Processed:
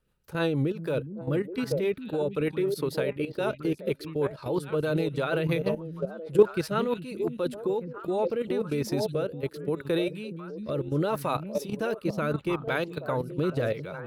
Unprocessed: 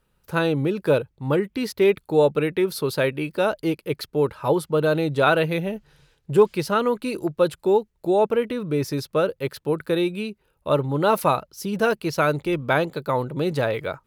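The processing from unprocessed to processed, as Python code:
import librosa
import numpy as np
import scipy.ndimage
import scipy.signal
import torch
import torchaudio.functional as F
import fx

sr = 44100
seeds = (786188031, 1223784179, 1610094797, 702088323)

y = fx.echo_stepped(x, sr, ms=413, hz=180.0, octaves=1.4, feedback_pct=70, wet_db=-3.0)
y = fx.level_steps(y, sr, step_db=12)
y = fx.rotary_switch(y, sr, hz=6.3, then_hz=0.75, switch_at_s=7.64)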